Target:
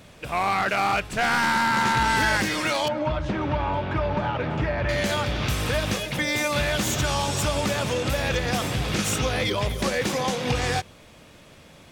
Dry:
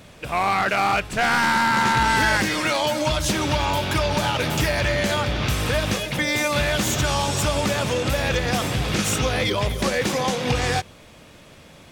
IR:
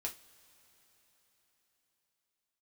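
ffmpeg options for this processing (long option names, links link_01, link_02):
-filter_complex "[0:a]asettb=1/sr,asplit=3[link_01][link_02][link_03];[link_01]atrim=end=2.884[link_04];[link_02]atrim=start=2.88:end=4.89,asetpts=PTS-STARTPTS,afade=type=in:duration=0.004:curve=qsin,afade=type=out:start_time=2.006:duration=0.004:curve=qsin,lowpass=1700[link_05];[link_03]atrim=start=4.886[link_06];[link_04][link_05]acrossfade=duration=0.004:curve1=hsin:curve2=qsin[link_07];[link_07][link_06]acrossfade=duration=0.004:curve1=qsin:curve2=hsin,volume=-2.5dB"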